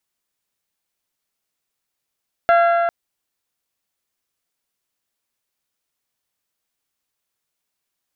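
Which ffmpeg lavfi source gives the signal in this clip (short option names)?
-f lavfi -i "aevalsrc='0.299*pow(10,-3*t/3.5)*sin(2*PI*684*t)+0.15*pow(10,-3*t/2.843)*sin(2*PI*1368*t)+0.075*pow(10,-3*t/2.692)*sin(2*PI*1641.6*t)+0.0376*pow(10,-3*t/2.517)*sin(2*PI*2052*t)+0.0188*pow(10,-3*t/2.309)*sin(2*PI*2736*t)+0.00944*pow(10,-3*t/2.16)*sin(2*PI*3420*t)+0.00473*pow(10,-3*t/2.045)*sin(2*PI*4104*t)':d=0.4:s=44100"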